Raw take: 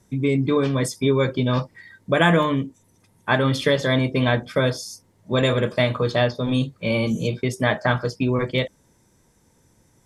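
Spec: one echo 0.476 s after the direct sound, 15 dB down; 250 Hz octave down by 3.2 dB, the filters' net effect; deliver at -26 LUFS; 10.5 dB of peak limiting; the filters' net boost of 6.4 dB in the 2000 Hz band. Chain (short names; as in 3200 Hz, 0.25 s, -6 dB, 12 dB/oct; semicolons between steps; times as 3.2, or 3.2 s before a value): bell 250 Hz -4 dB; bell 2000 Hz +8 dB; limiter -11.5 dBFS; echo 0.476 s -15 dB; gain -2.5 dB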